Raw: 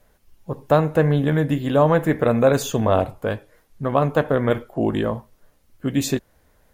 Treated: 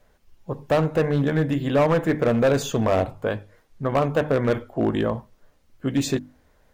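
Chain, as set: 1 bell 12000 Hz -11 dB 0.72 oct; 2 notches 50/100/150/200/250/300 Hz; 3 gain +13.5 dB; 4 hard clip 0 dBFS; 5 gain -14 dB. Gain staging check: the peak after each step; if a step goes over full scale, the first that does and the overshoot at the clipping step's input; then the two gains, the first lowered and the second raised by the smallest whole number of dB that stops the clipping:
-4.0, -4.0, +9.5, 0.0, -14.0 dBFS; step 3, 9.5 dB; step 3 +3.5 dB, step 5 -4 dB

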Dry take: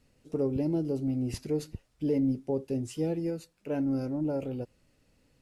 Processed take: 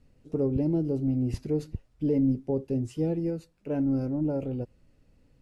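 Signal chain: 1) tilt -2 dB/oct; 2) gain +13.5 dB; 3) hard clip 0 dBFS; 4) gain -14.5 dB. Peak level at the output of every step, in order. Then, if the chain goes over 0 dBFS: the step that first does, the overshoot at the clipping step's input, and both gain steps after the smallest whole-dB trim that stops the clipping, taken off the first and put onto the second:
-15.5, -2.0, -2.0, -16.5 dBFS; no overload

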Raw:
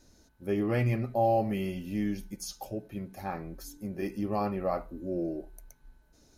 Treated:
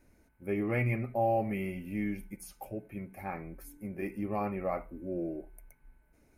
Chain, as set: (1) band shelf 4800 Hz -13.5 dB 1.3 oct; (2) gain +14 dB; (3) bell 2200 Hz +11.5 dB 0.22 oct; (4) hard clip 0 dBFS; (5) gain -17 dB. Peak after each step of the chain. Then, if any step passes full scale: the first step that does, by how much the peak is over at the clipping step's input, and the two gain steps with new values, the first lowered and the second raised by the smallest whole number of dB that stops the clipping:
-16.0, -2.0, -2.0, -2.0, -19.0 dBFS; no overload

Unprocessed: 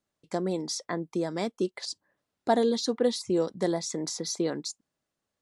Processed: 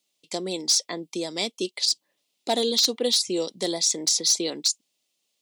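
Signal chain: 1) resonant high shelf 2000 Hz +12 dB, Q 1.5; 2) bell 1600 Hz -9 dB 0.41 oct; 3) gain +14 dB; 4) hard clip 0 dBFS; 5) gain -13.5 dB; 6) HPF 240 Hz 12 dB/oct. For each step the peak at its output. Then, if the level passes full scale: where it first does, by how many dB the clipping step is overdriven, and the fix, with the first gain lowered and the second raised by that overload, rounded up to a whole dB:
-6.0, -6.0, +8.0, 0.0, -13.5, -10.5 dBFS; step 3, 8.0 dB; step 3 +6 dB, step 5 -5.5 dB

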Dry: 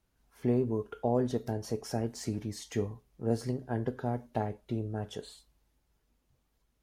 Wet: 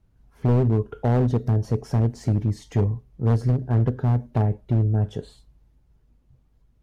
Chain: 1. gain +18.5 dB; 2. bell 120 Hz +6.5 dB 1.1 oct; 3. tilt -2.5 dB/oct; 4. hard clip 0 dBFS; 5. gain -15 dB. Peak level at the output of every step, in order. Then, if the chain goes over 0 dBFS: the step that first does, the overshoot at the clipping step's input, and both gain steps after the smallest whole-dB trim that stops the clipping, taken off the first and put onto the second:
+2.0, +3.5, +8.5, 0.0, -15.0 dBFS; step 1, 8.5 dB; step 1 +9.5 dB, step 5 -6 dB

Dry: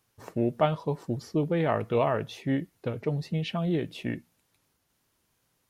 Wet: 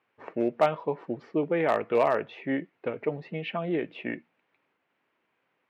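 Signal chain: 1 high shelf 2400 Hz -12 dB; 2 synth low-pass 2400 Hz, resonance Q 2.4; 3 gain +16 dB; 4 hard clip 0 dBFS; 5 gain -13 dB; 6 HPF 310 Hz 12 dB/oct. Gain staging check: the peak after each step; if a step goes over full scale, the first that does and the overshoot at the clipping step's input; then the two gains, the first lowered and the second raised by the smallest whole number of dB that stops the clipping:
-12.0, -10.0, +6.0, 0.0, -13.0, -10.5 dBFS; step 3, 6.0 dB; step 3 +10 dB, step 5 -7 dB

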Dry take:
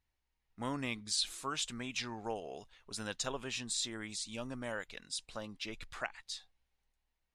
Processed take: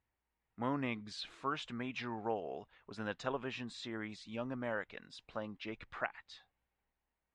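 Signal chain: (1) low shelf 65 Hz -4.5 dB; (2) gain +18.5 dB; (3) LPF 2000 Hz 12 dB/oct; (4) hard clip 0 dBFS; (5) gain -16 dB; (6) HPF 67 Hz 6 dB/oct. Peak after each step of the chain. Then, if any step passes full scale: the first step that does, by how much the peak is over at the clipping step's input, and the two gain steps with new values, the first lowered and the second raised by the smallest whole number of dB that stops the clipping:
-20.5, -2.0, -3.5, -3.5, -19.5, -19.5 dBFS; no overload

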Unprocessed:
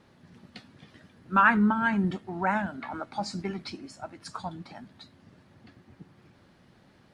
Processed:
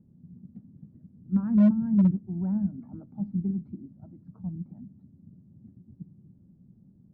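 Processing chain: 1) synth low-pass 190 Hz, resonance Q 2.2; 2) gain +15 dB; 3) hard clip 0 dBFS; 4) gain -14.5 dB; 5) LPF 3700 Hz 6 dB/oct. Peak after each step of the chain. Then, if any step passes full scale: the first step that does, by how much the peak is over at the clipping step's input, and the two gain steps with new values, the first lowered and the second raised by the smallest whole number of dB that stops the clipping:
-11.0, +4.0, 0.0, -14.5, -14.5 dBFS; step 2, 4.0 dB; step 2 +11 dB, step 4 -10.5 dB

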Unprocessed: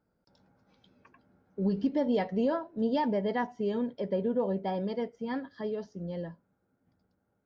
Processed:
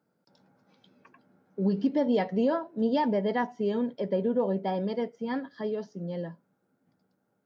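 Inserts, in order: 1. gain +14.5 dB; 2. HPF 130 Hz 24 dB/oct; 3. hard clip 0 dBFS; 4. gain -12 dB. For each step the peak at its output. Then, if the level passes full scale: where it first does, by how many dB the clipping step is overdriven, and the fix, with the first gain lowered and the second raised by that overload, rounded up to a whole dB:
-4.5, -3.5, -3.5, -15.5 dBFS; no overload

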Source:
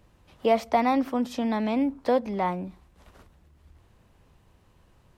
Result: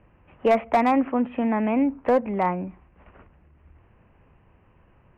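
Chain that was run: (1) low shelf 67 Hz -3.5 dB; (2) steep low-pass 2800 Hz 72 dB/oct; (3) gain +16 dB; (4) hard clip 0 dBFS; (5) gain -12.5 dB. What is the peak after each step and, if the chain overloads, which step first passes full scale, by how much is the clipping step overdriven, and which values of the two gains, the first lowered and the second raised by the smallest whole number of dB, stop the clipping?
-10.0, -10.0, +6.0, 0.0, -12.5 dBFS; step 3, 6.0 dB; step 3 +10 dB, step 5 -6.5 dB

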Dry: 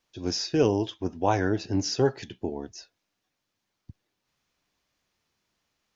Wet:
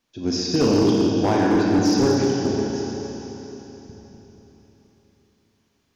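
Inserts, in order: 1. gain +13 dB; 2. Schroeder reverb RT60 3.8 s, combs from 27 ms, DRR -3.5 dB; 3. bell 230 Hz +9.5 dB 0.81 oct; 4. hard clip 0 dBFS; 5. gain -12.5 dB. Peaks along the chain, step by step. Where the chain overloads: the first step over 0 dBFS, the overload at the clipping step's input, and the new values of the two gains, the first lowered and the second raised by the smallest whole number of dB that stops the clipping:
+4.0, +5.0, +8.5, 0.0, -12.5 dBFS; step 1, 8.5 dB; step 1 +4 dB, step 5 -3.5 dB

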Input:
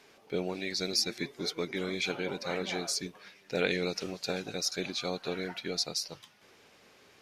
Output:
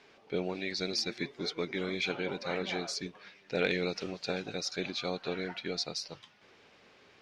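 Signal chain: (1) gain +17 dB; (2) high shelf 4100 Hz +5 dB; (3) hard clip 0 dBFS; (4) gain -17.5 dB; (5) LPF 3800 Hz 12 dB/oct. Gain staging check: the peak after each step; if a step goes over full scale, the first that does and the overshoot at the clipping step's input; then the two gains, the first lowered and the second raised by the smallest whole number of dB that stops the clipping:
+3.5, +5.0, 0.0, -17.5, -17.0 dBFS; step 1, 5.0 dB; step 1 +12 dB, step 4 -12.5 dB

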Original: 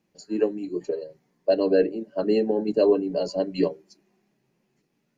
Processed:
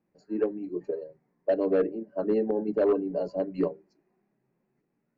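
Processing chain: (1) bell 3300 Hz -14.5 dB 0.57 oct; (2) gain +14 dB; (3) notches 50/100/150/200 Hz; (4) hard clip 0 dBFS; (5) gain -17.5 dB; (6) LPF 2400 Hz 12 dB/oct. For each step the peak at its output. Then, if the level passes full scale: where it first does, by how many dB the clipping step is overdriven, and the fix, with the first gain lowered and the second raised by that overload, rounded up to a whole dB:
-9.0, +5.0, +5.0, 0.0, -17.5, -17.0 dBFS; step 2, 5.0 dB; step 2 +9 dB, step 5 -12.5 dB

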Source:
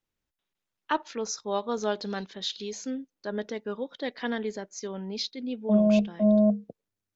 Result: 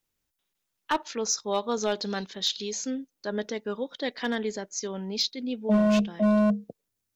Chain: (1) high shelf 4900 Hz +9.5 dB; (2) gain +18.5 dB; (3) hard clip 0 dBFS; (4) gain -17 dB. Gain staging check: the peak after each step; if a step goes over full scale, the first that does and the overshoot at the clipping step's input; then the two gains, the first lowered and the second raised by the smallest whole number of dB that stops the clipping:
-11.5, +7.0, 0.0, -17.0 dBFS; step 2, 7.0 dB; step 2 +11.5 dB, step 4 -10 dB

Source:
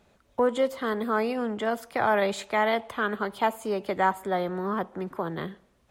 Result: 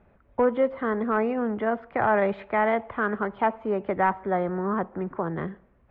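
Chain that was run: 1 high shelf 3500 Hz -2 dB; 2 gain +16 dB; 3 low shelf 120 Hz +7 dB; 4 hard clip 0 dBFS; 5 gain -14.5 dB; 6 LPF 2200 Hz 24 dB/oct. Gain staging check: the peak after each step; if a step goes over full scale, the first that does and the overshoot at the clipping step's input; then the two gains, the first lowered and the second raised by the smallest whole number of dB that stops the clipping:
-11.0, +5.0, +5.5, 0.0, -14.5, -13.0 dBFS; step 2, 5.5 dB; step 2 +10 dB, step 5 -8.5 dB

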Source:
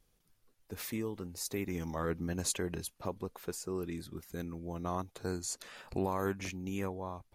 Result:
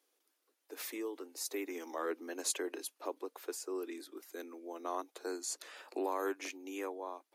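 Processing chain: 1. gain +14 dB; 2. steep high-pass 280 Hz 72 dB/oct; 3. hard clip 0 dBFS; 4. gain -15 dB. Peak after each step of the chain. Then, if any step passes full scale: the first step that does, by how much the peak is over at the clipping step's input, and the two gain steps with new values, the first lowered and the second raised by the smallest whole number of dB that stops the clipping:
-6.0, -6.0, -6.0, -21.0 dBFS; no overload

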